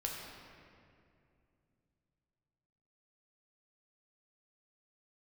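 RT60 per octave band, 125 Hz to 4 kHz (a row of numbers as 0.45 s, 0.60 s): 4.0 s, 3.4 s, 2.7 s, 2.2 s, 2.1 s, 1.5 s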